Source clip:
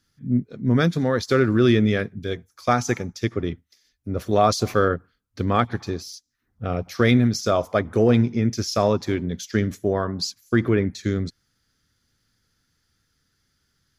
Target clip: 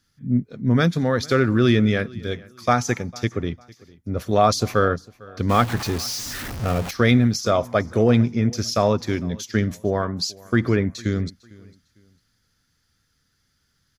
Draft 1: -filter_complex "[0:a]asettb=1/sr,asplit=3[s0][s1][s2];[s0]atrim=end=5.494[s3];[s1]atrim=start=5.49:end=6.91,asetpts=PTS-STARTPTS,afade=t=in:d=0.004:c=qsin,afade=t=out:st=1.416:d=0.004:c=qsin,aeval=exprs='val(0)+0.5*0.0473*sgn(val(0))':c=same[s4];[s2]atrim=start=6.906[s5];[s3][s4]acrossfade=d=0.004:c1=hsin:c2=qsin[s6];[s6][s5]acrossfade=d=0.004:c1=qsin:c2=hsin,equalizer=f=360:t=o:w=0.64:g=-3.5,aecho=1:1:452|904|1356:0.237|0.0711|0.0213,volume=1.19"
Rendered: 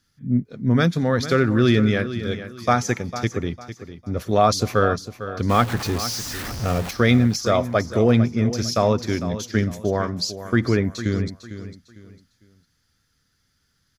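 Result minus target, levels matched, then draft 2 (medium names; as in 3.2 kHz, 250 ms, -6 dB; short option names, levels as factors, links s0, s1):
echo-to-direct +11 dB
-filter_complex "[0:a]asettb=1/sr,asplit=3[s0][s1][s2];[s0]atrim=end=5.494[s3];[s1]atrim=start=5.49:end=6.91,asetpts=PTS-STARTPTS,afade=t=in:d=0.004:c=qsin,afade=t=out:st=1.416:d=0.004:c=qsin,aeval=exprs='val(0)+0.5*0.0473*sgn(val(0))':c=same[s4];[s2]atrim=start=6.906[s5];[s3][s4]acrossfade=d=0.004:c1=hsin:c2=qsin[s6];[s6][s5]acrossfade=d=0.004:c1=qsin:c2=hsin,equalizer=f=360:t=o:w=0.64:g=-3.5,aecho=1:1:452|904:0.0668|0.0201,volume=1.19"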